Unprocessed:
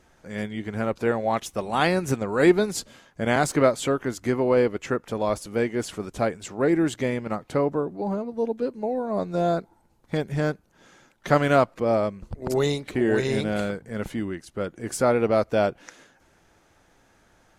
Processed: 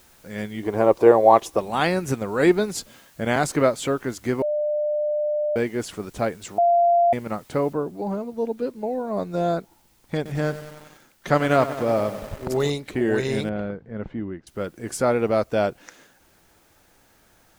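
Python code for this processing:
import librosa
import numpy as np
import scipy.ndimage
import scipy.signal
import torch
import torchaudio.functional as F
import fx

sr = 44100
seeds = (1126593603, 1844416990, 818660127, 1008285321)

y = fx.spec_box(x, sr, start_s=0.63, length_s=0.95, low_hz=290.0, high_hz=1200.0, gain_db=11)
y = fx.noise_floor_step(y, sr, seeds[0], at_s=7.73, before_db=-56, after_db=-63, tilt_db=0.0)
y = fx.echo_crushed(y, sr, ms=94, feedback_pct=80, bits=6, wet_db=-12.5, at=(10.16, 12.7))
y = fx.spacing_loss(y, sr, db_at_10k=42, at=(13.49, 14.47))
y = fx.edit(y, sr, fx.bleep(start_s=4.42, length_s=1.14, hz=598.0, db=-20.5),
    fx.bleep(start_s=6.58, length_s=0.55, hz=691.0, db=-14.0), tone=tone)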